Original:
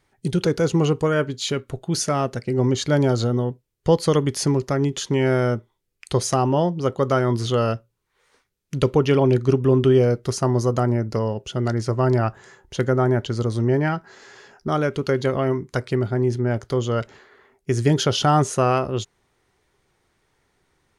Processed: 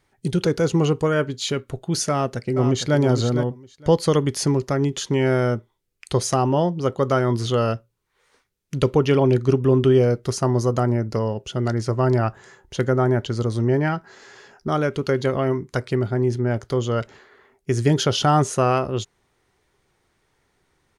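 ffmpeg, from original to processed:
ffmpeg -i in.wav -filter_complex "[0:a]asplit=2[link_01][link_02];[link_02]afade=type=in:start_time=2.1:duration=0.01,afade=type=out:start_time=2.97:duration=0.01,aecho=0:1:460|920:0.375837|0.0563756[link_03];[link_01][link_03]amix=inputs=2:normalize=0" out.wav

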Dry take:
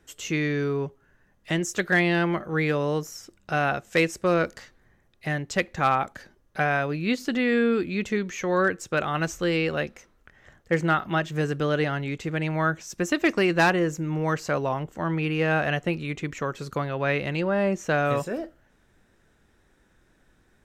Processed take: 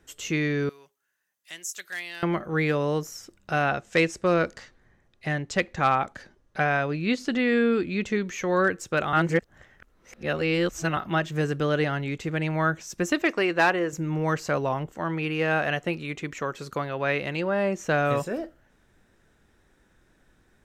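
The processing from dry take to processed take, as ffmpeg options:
ffmpeg -i in.wav -filter_complex "[0:a]asettb=1/sr,asplit=3[link_01][link_02][link_03];[link_01]atrim=end=0.694[link_04];[link_02]atrim=start=0.69:end=2.23,asetpts=PTS-STARTPTS,afade=type=in:duration=0.004:curve=qsin,afade=type=out:start_time=1.536:duration=0.004:curve=qsin,aderivative[link_05];[link_03]atrim=start=2.226[link_06];[link_04][link_05]acrossfade=duration=0.004:curve1=hsin:curve2=qsin[link_07];[link_07][link_06]acrossfade=duration=0.004:curve1=qsin:curve2=hsin,asettb=1/sr,asplit=3[link_08][link_09][link_10];[link_08]atrim=end=3.634[link_11];[link_09]atrim=start=3.63:end=8.21,asetpts=PTS-STARTPTS,afade=type=in:duration=0.004:curve=qsin,afade=type=out:start_time=4.576:duration=0.004:curve=qsin,lowpass=8600[link_12];[link_10]atrim=start=8.206[link_13];[link_11][link_12]acrossfade=duration=0.004:curve1=hsin:curve2=qsin[link_14];[link_14][link_13]acrossfade=duration=0.004:curve1=qsin:curve2=hsin,asettb=1/sr,asplit=3[link_15][link_16][link_17];[link_15]atrim=end=13.224[link_18];[link_16]atrim=start=13.22:end=13.93,asetpts=PTS-STARTPTS,afade=type=in:duration=0.004:curve=qsin,afade=type=out:start_time=0.706:duration=0.004:curve=qsin,bass=frequency=250:gain=-12,treble=frequency=4000:gain=-6[link_19];[link_17]atrim=start=13.926[link_20];[link_18][link_19]acrossfade=duration=0.004:curve1=hsin:curve2=qsin[link_21];[link_21][link_20]acrossfade=duration=0.004:curve1=qsin:curve2=hsin,asettb=1/sr,asplit=3[link_22][link_23][link_24];[link_22]atrim=end=14.924[link_25];[link_23]atrim=start=14.92:end=17.79,asetpts=PTS-STARTPTS,afade=type=in:duration=0.004:curve=qsin,afade=type=out:start_time=2.866:duration=0.004:curve=qsin,lowshelf=frequency=180:gain=-7.5[link_26];[link_24]atrim=start=17.786[link_27];[link_25][link_26]acrossfade=duration=0.004:curve1=hsin:curve2=qsin[link_28];[link_28][link_27]acrossfade=duration=0.004:curve1=qsin:curve2=hsin,asplit=3[link_29][link_30][link_31];[link_29]atrim=end=9.132[link_32];[link_30]atrim=start=9.128:end=10.972,asetpts=PTS-STARTPTS,areverse[link_33];[link_31]atrim=start=10.968[link_34];[link_32][link_33]acrossfade=duration=0.004:curve1=hsin:curve2=hsin[link_35];[link_35][link_34]acrossfade=duration=0.004:curve1=hsin:curve2=hsin" out.wav

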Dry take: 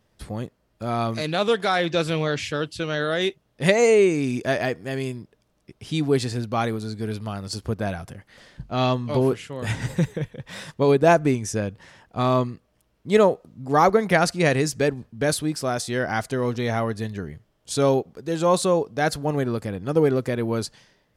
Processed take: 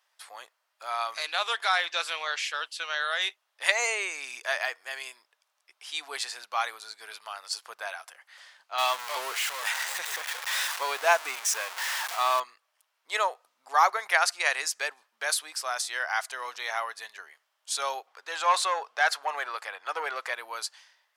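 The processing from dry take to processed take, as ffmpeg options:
ffmpeg -i in.wav -filter_complex "[0:a]asettb=1/sr,asplit=3[link_01][link_02][link_03];[link_01]atrim=end=8.784[link_04];[link_02]atrim=start=8.78:end=12.4,asetpts=PTS-STARTPTS,afade=type=in:duration=0.004:curve=qsin,afade=type=out:start_time=3.616:duration=0.004:curve=qsin,aeval=exprs='val(0)+0.5*0.0596*sgn(val(0))':channel_layout=same[link_05];[link_03]atrim=start=12.396[link_06];[link_04][link_05]acrossfade=duration=0.004:curve1=hsin:curve2=qsin[link_07];[link_07][link_06]acrossfade=duration=0.004:curve1=qsin:curve2=hsin,asettb=1/sr,asplit=3[link_08][link_09][link_10];[link_08]atrim=end=18.074[link_11];[link_09]atrim=start=18.07:end=20.34,asetpts=PTS-STARTPTS,afade=type=in:duration=0.004:curve=qsin,afade=type=out:start_time=2.266:duration=0.004:curve=qsin,asplit=2[link_12][link_13];[link_13]highpass=frequency=720:poles=1,volume=13dB,asoftclip=type=tanh:threshold=-7dB[link_14];[link_12][link_14]amix=inputs=2:normalize=0,lowpass=frequency=2400:poles=1,volume=-6dB[link_15];[link_10]atrim=start=20.336[link_16];[link_11][link_15]acrossfade=duration=0.004:curve1=hsin:curve2=qsin[link_17];[link_17][link_16]acrossfade=duration=0.004:curve1=qsin:curve2=hsin,highpass=frequency=870:width=0.5412,highpass=frequency=870:width=1.3066" out.wav

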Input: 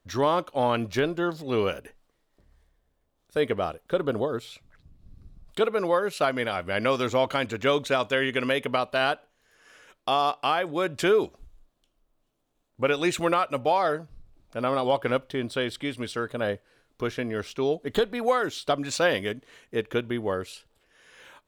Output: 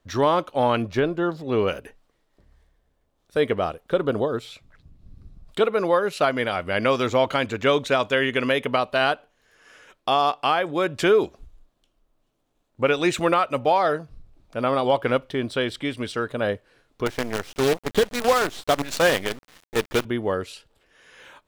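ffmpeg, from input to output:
ffmpeg -i in.wav -filter_complex "[0:a]asettb=1/sr,asplit=3[link_01][link_02][link_03];[link_01]atrim=end=0.824[link_04];[link_02]atrim=start=0.82:end=1.68,asetpts=PTS-STARTPTS,afade=type=in:duration=0.004:curve=qsin,afade=type=out:start_time=0.856:duration=0.004:curve=qsin,highshelf=frequency=2400:gain=-7.5[link_05];[link_03]atrim=start=1.676[link_06];[link_04][link_05]acrossfade=duration=0.004:curve1=hsin:curve2=qsin[link_07];[link_07][link_06]acrossfade=duration=0.004:curve1=qsin:curve2=hsin,asettb=1/sr,asplit=3[link_08][link_09][link_10];[link_08]atrim=end=17.064[link_11];[link_09]atrim=start=17.06:end=20.05,asetpts=PTS-STARTPTS,afade=type=in:duration=0.004:curve=qsin,afade=type=out:start_time=2.986:duration=0.004:curve=qsin,acrusher=bits=5:dc=4:mix=0:aa=0.000001[link_12];[link_10]atrim=start=20.046[link_13];[link_11][link_12]acrossfade=duration=0.004:curve1=hsin:curve2=qsin[link_14];[link_14][link_13]acrossfade=duration=0.004:curve1=qsin:curve2=hsin,highshelf=frequency=8600:gain=-6,volume=3.5dB" out.wav

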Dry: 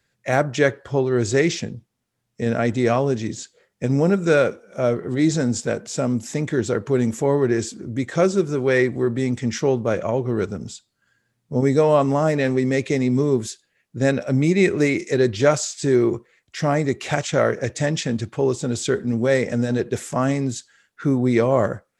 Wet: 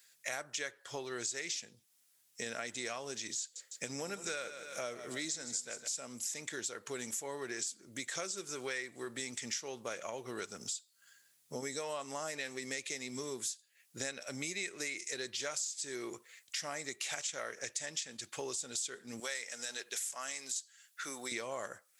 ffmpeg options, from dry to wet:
ffmpeg -i in.wav -filter_complex "[0:a]asettb=1/sr,asplit=3[link_01][link_02][link_03];[link_01]atrim=end=3.404[link_04];[link_02]atrim=start=3.4:end=5.88,asetpts=PTS-STARTPTS,afade=type=in:duration=0.004:curve=qsin,afade=type=out:start_time=2.476:duration=0.004:curve=qsin,aecho=1:1:156|312|468|624:0.2|0.0858|0.0369|0.0159,atrim=end_sample=109368[link_05];[link_03]atrim=start=5.876[link_06];[link_04][link_05]acrossfade=duration=0.004:curve1=hsin:curve2=qsin[link_07];[link_07][link_06]acrossfade=duration=0.004:curve1=qsin:curve2=hsin,asettb=1/sr,asplit=3[link_08][link_09][link_10];[link_08]atrim=end=19.204[link_11];[link_09]atrim=start=19.2:end=21.32,asetpts=PTS-STARTPTS,afade=type=in:duration=0.004:curve=qsin,afade=type=out:start_time=2.116:duration=0.004:curve=qsin,highpass=frequency=1100:poles=1[link_12];[link_10]atrim=start=21.316[link_13];[link_11][link_12]acrossfade=duration=0.004:curve1=hsin:curve2=qsin[link_14];[link_14][link_13]acrossfade=duration=0.004:curve1=qsin:curve2=hsin,aderivative,acompressor=threshold=-51dB:ratio=5,volume=12.5dB" out.wav

